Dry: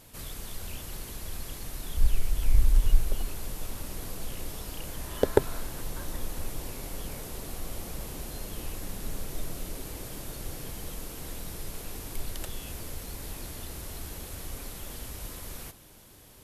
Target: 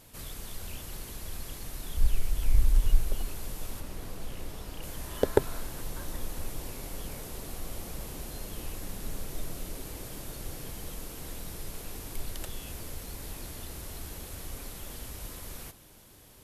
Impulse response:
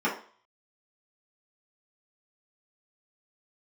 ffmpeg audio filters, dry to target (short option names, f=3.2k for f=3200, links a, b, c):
-filter_complex "[0:a]asettb=1/sr,asplit=3[a][b][c];[a]atrim=end=3.804[d];[b]atrim=start=3.8:end=4.83,asetpts=PTS-STARTPTS,afade=t=in:d=0.004:c=qsin,afade=t=out:st=1.026:d=0.004:c=qsin,highshelf=f=4.4k:g=-7[e];[c]atrim=start=4.826[f];[d][e]acrossfade=d=0.004:c1=hsin:c2=qsin[g];[g][f]acrossfade=d=0.004:c1=qsin:c2=hsin,volume=-1.5dB"